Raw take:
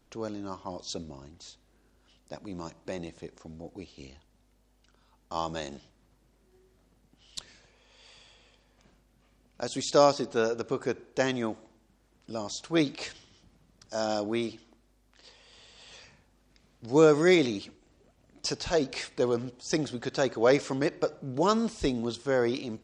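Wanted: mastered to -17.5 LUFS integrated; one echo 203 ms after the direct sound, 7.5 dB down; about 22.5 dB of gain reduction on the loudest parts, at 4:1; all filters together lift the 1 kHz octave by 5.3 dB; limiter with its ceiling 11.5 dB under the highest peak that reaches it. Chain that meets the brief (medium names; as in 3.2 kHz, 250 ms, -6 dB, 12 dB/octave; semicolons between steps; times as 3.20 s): peaking EQ 1 kHz +7 dB; compression 4:1, threshold -41 dBFS; peak limiter -34.5 dBFS; delay 203 ms -7.5 dB; trim +29.5 dB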